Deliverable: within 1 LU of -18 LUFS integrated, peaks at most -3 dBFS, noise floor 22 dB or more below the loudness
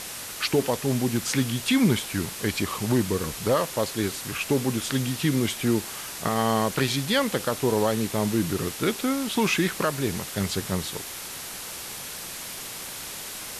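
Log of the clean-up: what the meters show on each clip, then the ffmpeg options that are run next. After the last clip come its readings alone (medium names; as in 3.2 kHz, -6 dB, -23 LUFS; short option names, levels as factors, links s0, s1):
noise floor -37 dBFS; noise floor target -48 dBFS; loudness -26.0 LUFS; peak level -9.5 dBFS; loudness target -18.0 LUFS
-> -af "afftdn=nr=11:nf=-37"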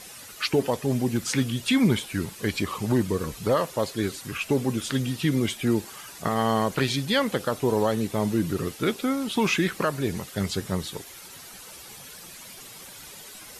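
noise floor -44 dBFS; noise floor target -48 dBFS
-> -af "afftdn=nr=6:nf=-44"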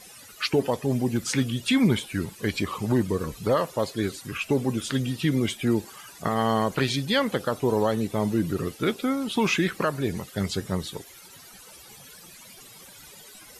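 noise floor -48 dBFS; loudness -26.0 LUFS; peak level -10.0 dBFS; loudness target -18.0 LUFS
-> -af "volume=2.51,alimiter=limit=0.708:level=0:latency=1"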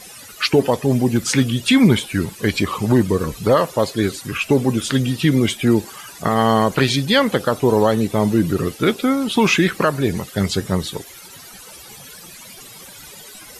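loudness -18.0 LUFS; peak level -3.0 dBFS; noise floor -40 dBFS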